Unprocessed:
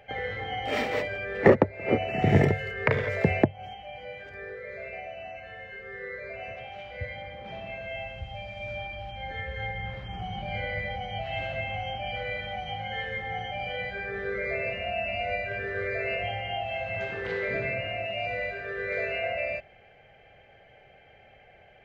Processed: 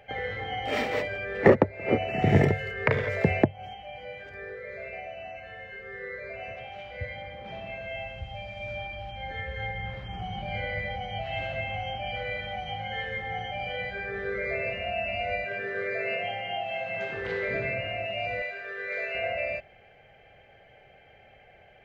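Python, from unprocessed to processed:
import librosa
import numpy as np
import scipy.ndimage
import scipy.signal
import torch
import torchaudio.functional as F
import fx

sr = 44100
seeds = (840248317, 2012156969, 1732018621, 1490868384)

y = fx.highpass(x, sr, hz=140.0, slope=24, at=(15.44, 17.14))
y = fx.highpass(y, sr, hz=750.0, slope=6, at=(18.42, 19.15))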